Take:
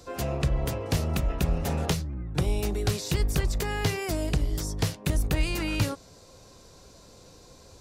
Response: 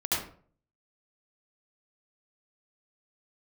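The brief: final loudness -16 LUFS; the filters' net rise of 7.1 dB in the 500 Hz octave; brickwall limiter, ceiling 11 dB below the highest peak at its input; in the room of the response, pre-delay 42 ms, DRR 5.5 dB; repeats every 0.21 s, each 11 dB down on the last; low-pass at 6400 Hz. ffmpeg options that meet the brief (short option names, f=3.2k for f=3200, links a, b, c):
-filter_complex "[0:a]lowpass=6.4k,equalizer=f=500:t=o:g=9,alimiter=limit=-22dB:level=0:latency=1,aecho=1:1:210|420|630:0.282|0.0789|0.0221,asplit=2[a][b];[1:a]atrim=start_sample=2205,adelay=42[c];[b][c]afir=irnorm=-1:irlink=0,volume=-14dB[d];[a][d]amix=inputs=2:normalize=0,volume=13.5dB"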